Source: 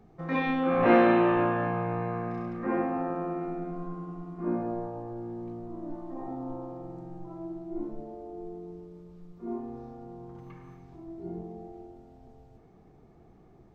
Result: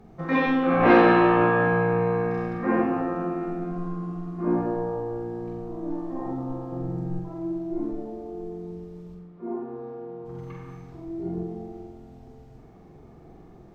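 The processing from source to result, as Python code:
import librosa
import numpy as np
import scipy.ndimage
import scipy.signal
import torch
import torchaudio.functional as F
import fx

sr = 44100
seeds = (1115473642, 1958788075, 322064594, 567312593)

p1 = fx.low_shelf(x, sr, hz=440.0, db=7.5, at=(6.72, 7.2))
p2 = fx.fold_sine(p1, sr, drive_db=4, ceiling_db=-8.5)
p3 = p1 + (p2 * 10.0 ** (-4.0 / 20.0))
p4 = fx.bandpass_edges(p3, sr, low_hz=210.0, high_hz=fx.line((9.14, 2100.0), (10.24, 2600.0)), at=(9.14, 10.24), fade=0.02)
p5 = fx.room_flutter(p4, sr, wall_m=7.7, rt60_s=0.64)
y = p5 * 10.0 ** (-2.5 / 20.0)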